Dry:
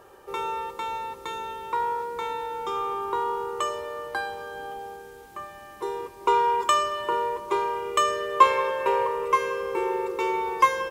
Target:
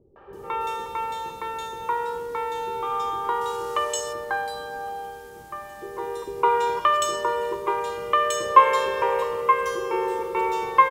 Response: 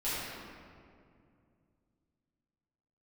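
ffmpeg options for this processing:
-filter_complex "[0:a]asettb=1/sr,asplit=3[s0][s1][s2];[s0]atrim=end=3.084[s3];[s1]atrim=start=3.08:end=3.8,asetpts=PTS-STARTPTS,afade=t=in:d=0.004:c=qsin,afade=t=out:st=0.716:d=0.004:c=qsin,equalizer=f=6400:w=0.47:g=9.5[s4];[s2]atrim=start=3.796[s5];[s3][s4]acrossfade=d=0.004:c1=hsin:c2=qsin[s6];[s6][s5]acrossfade=d=0.004:c1=qsin:c2=hsin,acrossover=split=350|2900[s7][s8][s9];[s8]adelay=160[s10];[s9]adelay=330[s11];[s7][s10][s11]amix=inputs=3:normalize=0,asplit=2[s12][s13];[1:a]atrim=start_sample=2205,atrim=end_sample=6174[s14];[s13][s14]afir=irnorm=-1:irlink=0,volume=0.158[s15];[s12][s15]amix=inputs=2:normalize=0,volume=1.33"

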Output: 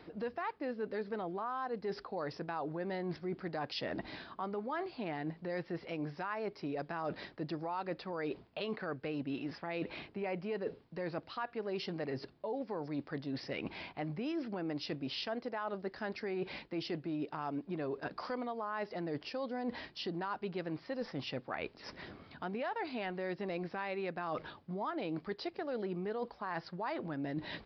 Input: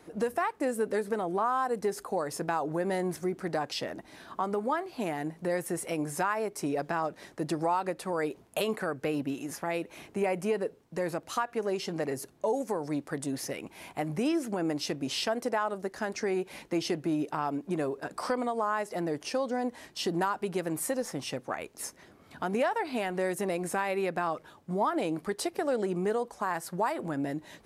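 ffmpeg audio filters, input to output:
-af "equalizer=f=650:w=0.37:g=-3.5,areverse,acompressor=threshold=0.00562:ratio=6,areverse,aresample=11025,aresample=44100,volume=2.66"

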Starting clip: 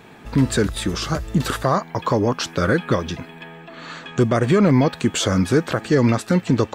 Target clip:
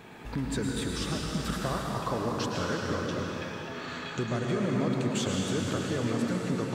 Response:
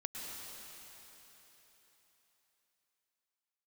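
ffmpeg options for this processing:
-filter_complex "[0:a]acompressor=threshold=0.0178:ratio=2[s0];[1:a]atrim=start_sample=2205[s1];[s0][s1]afir=irnorm=-1:irlink=0"

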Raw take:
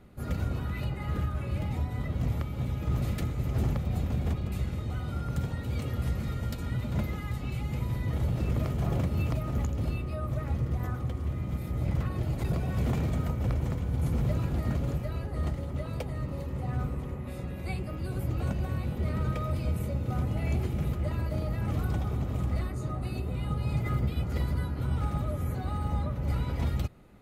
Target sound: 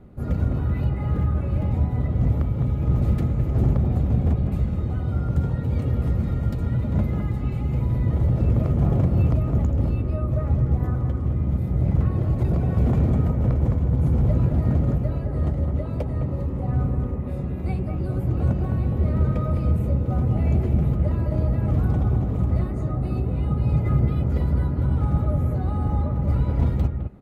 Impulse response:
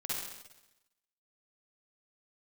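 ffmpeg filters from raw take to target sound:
-filter_complex "[0:a]tiltshelf=f=1400:g=8,acrossover=split=2900[s0][s1];[s0]aecho=1:1:210:0.501[s2];[s2][s1]amix=inputs=2:normalize=0"

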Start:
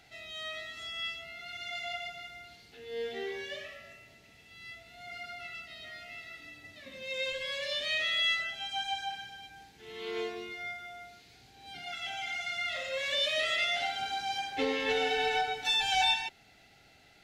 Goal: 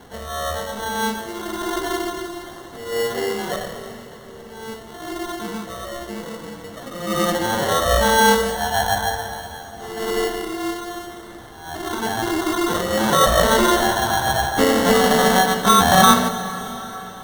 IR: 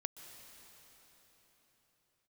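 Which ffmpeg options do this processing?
-filter_complex "[0:a]equalizer=f=6500:t=o:w=0.77:g=8,acrusher=samples=18:mix=1:aa=0.000001,asplit=2[s0][s1];[1:a]atrim=start_sample=2205[s2];[s1][s2]afir=irnorm=-1:irlink=0,volume=1.68[s3];[s0][s3]amix=inputs=2:normalize=0,volume=2.24"

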